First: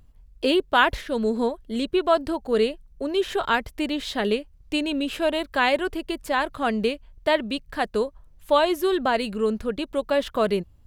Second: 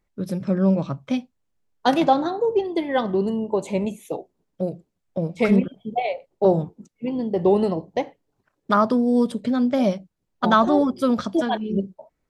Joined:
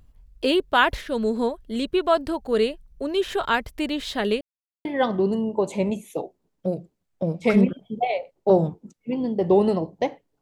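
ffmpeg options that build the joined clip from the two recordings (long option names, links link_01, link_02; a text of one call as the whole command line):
ffmpeg -i cue0.wav -i cue1.wav -filter_complex "[0:a]apad=whole_dur=10.41,atrim=end=10.41,asplit=2[link_01][link_02];[link_01]atrim=end=4.41,asetpts=PTS-STARTPTS,afade=type=out:start_time=4.406:duration=0.004:curve=hsin[link_03];[link_02]atrim=start=4.41:end=4.85,asetpts=PTS-STARTPTS,volume=0[link_04];[1:a]atrim=start=2.8:end=8.36,asetpts=PTS-STARTPTS,afade=type=in:duration=0.004:curve=hsin[link_05];[link_03][link_04][link_05]concat=n=3:v=0:a=1" out.wav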